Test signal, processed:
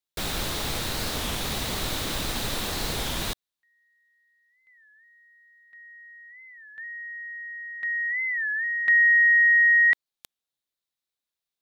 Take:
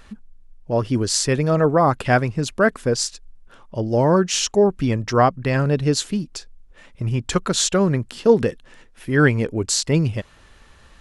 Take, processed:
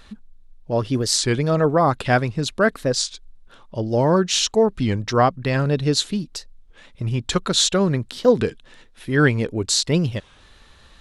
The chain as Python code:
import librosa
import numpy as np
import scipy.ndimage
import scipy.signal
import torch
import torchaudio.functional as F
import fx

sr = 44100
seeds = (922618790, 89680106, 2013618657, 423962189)

y = fx.peak_eq(x, sr, hz=3800.0, db=8.5, octaves=0.42)
y = fx.record_warp(y, sr, rpm=33.33, depth_cents=160.0)
y = y * 10.0 ** (-1.0 / 20.0)